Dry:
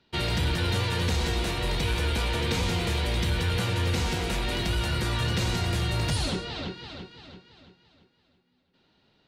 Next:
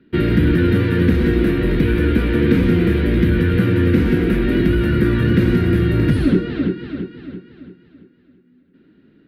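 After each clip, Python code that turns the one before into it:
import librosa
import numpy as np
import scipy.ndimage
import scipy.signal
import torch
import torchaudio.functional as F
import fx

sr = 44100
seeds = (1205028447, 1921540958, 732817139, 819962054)

y = fx.curve_eq(x, sr, hz=(100.0, 300.0, 850.0, 1600.0, 7200.0, 12000.0), db=(0, 14, -16, 2, -28, -8))
y = y * librosa.db_to_amplitude(8.5)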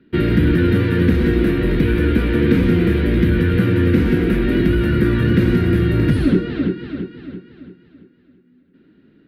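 y = x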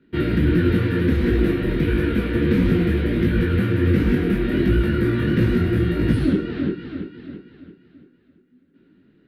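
y = fx.detune_double(x, sr, cents=51)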